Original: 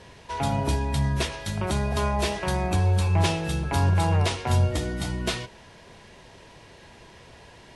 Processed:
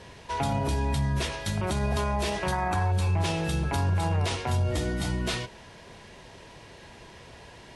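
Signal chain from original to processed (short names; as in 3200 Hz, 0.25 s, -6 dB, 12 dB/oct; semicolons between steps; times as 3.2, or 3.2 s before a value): 2.52–2.92 band shelf 1200 Hz +10.5 dB; added harmonics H 5 -29 dB, 7 -42 dB, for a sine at -10 dBFS; limiter -19 dBFS, peak gain reduction 8.5 dB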